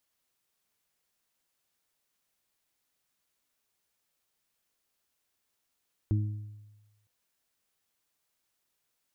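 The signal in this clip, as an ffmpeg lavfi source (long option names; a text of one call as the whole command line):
ffmpeg -f lavfi -i "aevalsrc='0.0794*pow(10,-3*t/1.14)*sin(2*PI*105*t)+0.0237*pow(10,-3*t/0.68)*sin(2*PI*210*t)+0.0251*pow(10,-3*t/0.66)*sin(2*PI*315*t)':duration=0.96:sample_rate=44100" out.wav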